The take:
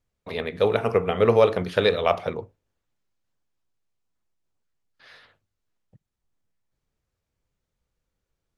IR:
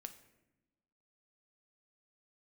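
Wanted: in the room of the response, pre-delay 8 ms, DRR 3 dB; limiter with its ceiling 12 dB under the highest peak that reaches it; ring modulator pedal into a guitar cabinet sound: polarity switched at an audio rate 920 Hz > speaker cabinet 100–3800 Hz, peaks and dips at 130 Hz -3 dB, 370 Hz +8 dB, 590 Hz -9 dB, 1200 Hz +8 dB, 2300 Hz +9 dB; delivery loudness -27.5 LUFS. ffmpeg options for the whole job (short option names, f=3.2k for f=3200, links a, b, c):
-filter_complex "[0:a]alimiter=limit=-16.5dB:level=0:latency=1,asplit=2[a][b];[1:a]atrim=start_sample=2205,adelay=8[c];[b][c]afir=irnorm=-1:irlink=0,volume=2.5dB[d];[a][d]amix=inputs=2:normalize=0,aeval=exprs='val(0)*sgn(sin(2*PI*920*n/s))':c=same,highpass=100,equalizer=f=130:t=q:w=4:g=-3,equalizer=f=370:t=q:w=4:g=8,equalizer=f=590:t=q:w=4:g=-9,equalizer=f=1.2k:t=q:w=4:g=8,equalizer=f=2.3k:t=q:w=4:g=9,lowpass=f=3.8k:w=0.5412,lowpass=f=3.8k:w=1.3066,volume=-5dB"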